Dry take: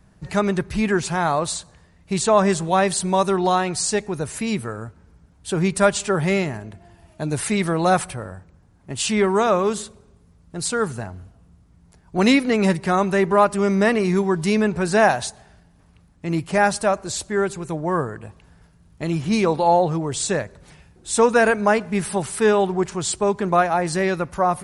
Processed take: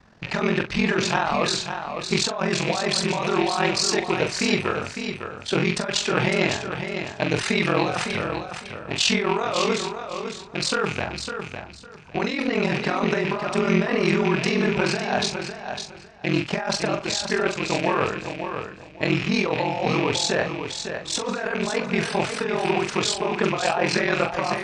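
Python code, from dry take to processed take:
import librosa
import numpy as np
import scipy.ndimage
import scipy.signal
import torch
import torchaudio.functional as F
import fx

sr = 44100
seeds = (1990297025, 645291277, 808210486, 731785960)

y = fx.rattle_buzz(x, sr, strikes_db=-32.0, level_db=-25.0)
y = scipy.signal.sosfilt(scipy.signal.butter(4, 5600.0, 'lowpass', fs=sr, output='sos'), y)
y = fx.low_shelf(y, sr, hz=280.0, db=-12.0)
y = fx.over_compress(y, sr, threshold_db=-26.0, ratio=-1.0)
y = y * np.sin(2.0 * np.pi * 21.0 * np.arange(len(y)) / sr)
y = fx.cheby_harmonics(y, sr, harmonics=(2,), levels_db=(-23,), full_scale_db=-10.0)
y = fx.doubler(y, sr, ms=41.0, db=-8.0)
y = fx.echo_feedback(y, sr, ms=555, feedback_pct=21, wet_db=-7.5)
y = y * librosa.db_to_amplitude(5.5)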